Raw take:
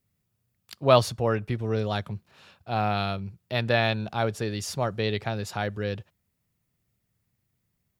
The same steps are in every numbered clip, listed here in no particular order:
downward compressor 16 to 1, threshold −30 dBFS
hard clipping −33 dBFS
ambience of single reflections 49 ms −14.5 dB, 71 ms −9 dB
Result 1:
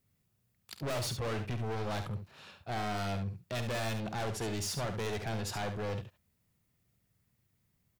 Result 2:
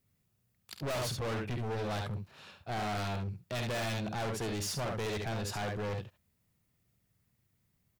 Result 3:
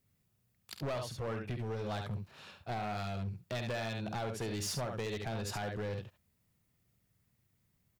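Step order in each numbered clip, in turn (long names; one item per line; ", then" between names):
hard clipping, then ambience of single reflections, then downward compressor
ambience of single reflections, then hard clipping, then downward compressor
ambience of single reflections, then downward compressor, then hard clipping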